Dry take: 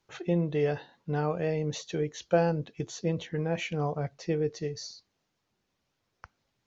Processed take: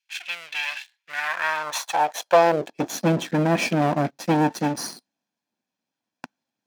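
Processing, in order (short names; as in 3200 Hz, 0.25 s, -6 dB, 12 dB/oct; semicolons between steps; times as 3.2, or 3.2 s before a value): minimum comb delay 1.2 ms; sample leveller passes 3; high-pass sweep 2500 Hz -> 250 Hz, 0.92–2.99; gain +1 dB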